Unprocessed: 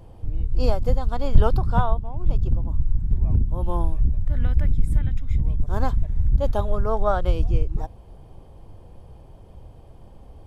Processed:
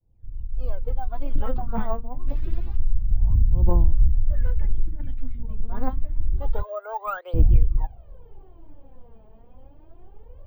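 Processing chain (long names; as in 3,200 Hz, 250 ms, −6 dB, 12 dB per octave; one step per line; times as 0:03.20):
fade in at the beginning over 1.61 s
0:04.87–0:05.50: compressor whose output falls as the input rises −23 dBFS, ratio −1
0:06.63–0:07.34: Butterworth high-pass 430 Hz 48 dB per octave
soft clipping −13.5 dBFS, distortion −13 dB
0:02.27–0:02.76: noise that follows the level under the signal 23 dB
phase shifter 0.27 Hz, delay 4.7 ms, feedback 80%
high-frequency loss of the air 410 metres
bad sample-rate conversion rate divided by 2×, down filtered, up hold
level −6 dB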